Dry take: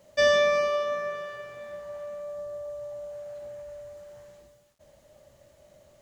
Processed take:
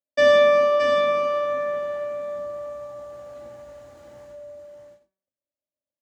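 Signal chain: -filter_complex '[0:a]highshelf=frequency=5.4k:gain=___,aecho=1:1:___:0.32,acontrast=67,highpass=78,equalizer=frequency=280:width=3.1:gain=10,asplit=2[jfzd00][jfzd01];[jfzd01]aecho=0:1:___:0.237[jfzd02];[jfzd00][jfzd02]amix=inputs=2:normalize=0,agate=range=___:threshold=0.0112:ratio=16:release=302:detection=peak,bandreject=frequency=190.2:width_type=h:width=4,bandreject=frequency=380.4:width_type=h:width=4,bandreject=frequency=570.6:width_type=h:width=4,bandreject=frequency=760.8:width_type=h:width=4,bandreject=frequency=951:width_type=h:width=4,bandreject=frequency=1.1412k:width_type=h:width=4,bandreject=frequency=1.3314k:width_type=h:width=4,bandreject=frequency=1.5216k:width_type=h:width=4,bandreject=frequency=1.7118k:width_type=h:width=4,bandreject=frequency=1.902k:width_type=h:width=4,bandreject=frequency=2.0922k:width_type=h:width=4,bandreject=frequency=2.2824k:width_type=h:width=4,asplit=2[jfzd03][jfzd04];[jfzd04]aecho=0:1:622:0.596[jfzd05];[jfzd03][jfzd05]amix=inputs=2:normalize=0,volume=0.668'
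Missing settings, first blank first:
-6, 3.5, 82, 0.00398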